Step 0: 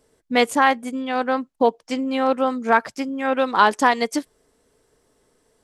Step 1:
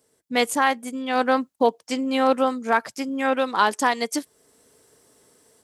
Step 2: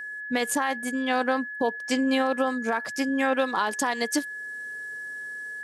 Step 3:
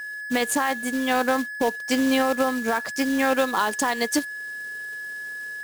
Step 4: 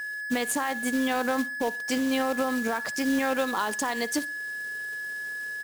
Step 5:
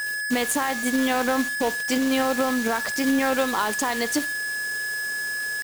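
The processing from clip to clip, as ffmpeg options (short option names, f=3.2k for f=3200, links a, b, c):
-af "highshelf=f=5.7k:g=10.5,dynaudnorm=f=200:g=3:m=9dB,highpass=89,volume=-5.5dB"
-af "alimiter=limit=-16.5dB:level=0:latency=1:release=143,aeval=exprs='val(0)+0.0178*sin(2*PI*1700*n/s)':c=same,volume=1.5dB"
-af "acrusher=bits=3:mode=log:mix=0:aa=0.000001,volume=2.5dB"
-af "alimiter=limit=-19dB:level=0:latency=1:release=35,aecho=1:1:61|122|183:0.0841|0.0345|0.0141"
-af "acrusher=bits=5:mix=0:aa=0.000001,volume=4dB"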